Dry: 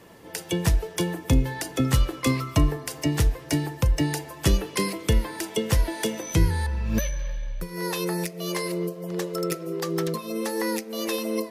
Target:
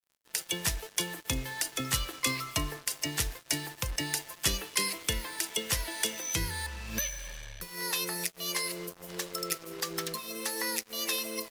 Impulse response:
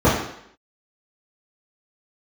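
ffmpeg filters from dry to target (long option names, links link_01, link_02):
-af "tiltshelf=frequency=970:gain=-9,acrusher=bits=5:mix=0:aa=0.5,volume=-6.5dB"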